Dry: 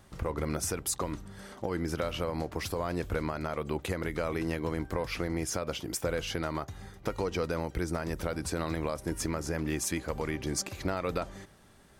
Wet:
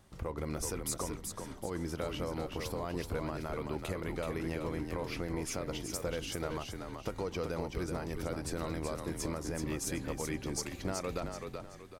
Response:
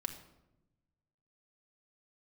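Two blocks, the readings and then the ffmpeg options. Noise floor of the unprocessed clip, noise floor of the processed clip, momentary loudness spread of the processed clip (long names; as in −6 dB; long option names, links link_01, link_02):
−57 dBFS, −49 dBFS, 4 LU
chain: -filter_complex "[0:a]equalizer=frequency=1600:width=1.5:gain=-2.5,asplit=2[link_01][link_02];[link_02]asplit=4[link_03][link_04][link_05][link_06];[link_03]adelay=379,afreqshift=-33,volume=-5dB[link_07];[link_04]adelay=758,afreqshift=-66,volume=-14.4dB[link_08];[link_05]adelay=1137,afreqshift=-99,volume=-23.7dB[link_09];[link_06]adelay=1516,afreqshift=-132,volume=-33.1dB[link_10];[link_07][link_08][link_09][link_10]amix=inputs=4:normalize=0[link_11];[link_01][link_11]amix=inputs=2:normalize=0,volume=-5dB"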